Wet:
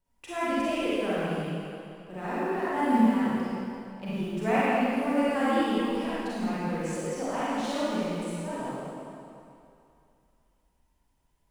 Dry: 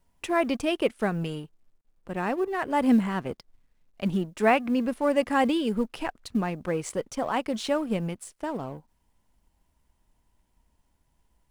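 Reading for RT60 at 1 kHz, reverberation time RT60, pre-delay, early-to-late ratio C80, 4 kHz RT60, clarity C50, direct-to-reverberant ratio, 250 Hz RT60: 2.7 s, 2.6 s, 33 ms, -4.5 dB, 2.3 s, -7.5 dB, -11.0 dB, 2.3 s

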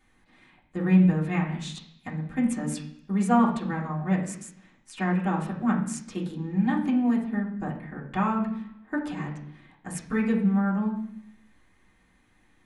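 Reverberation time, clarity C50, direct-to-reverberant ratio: 0.70 s, 7.5 dB, -8.5 dB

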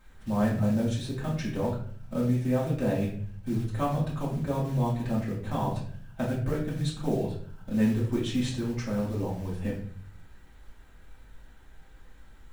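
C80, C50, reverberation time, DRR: 9.0 dB, 5.5 dB, 0.50 s, -7.0 dB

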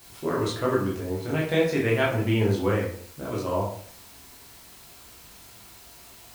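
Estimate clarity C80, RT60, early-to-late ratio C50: 8.5 dB, 0.55 s, 4.5 dB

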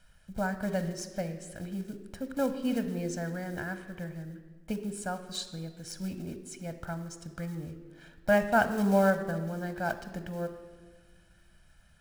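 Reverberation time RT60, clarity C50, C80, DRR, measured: 1.5 s, 11.0 dB, 12.5 dB, 9.5 dB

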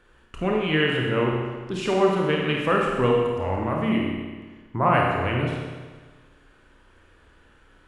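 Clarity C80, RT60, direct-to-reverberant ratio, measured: 2.5 dB, 1.4 s, -1.5 dB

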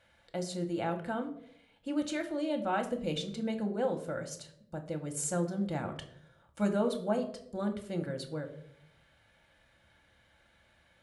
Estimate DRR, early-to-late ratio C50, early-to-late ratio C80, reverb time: 4.5 dB, 12.0 dB, 15.0 dB, 0.70 s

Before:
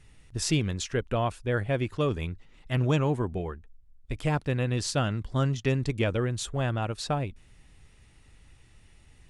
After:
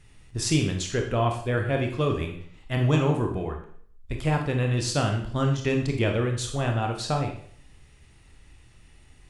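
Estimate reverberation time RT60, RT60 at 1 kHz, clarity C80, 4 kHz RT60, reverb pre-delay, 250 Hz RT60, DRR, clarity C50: 0.60 s, 0.55 s, 10.5 dB, 0.55 s, 23 ms, 0.60 s, 2.5 dB, 6.5 dB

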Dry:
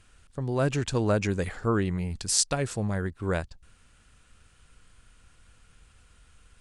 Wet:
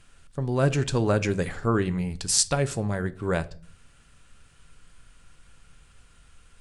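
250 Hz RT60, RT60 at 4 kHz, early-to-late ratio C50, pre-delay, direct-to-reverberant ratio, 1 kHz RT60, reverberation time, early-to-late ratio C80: 0.70 s, 0.35 s, 20.0 dB, 5 ms, 11.0 dB, 0.40 s, 0.45 s, 24.5 dB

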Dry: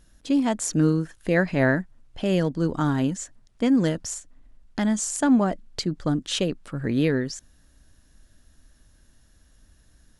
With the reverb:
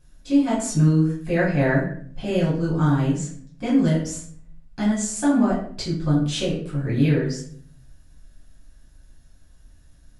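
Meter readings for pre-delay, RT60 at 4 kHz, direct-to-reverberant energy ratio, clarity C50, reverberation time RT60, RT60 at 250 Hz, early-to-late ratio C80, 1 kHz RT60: 3 ms, 0.40 s, -8.0 dB, 4.5 dB, 0.55 s, 0.85 s, 8.5 dB, 0.50 s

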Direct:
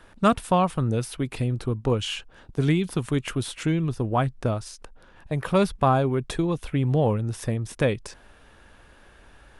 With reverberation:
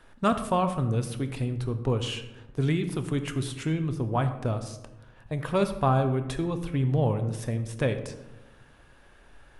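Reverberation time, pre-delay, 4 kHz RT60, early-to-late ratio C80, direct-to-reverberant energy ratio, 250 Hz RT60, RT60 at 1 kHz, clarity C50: 1.0 s, 7 ms, 0.55 s, 12.0 dB, 7.5 dB, 1.4 s, 0.90 s, 10.5 dB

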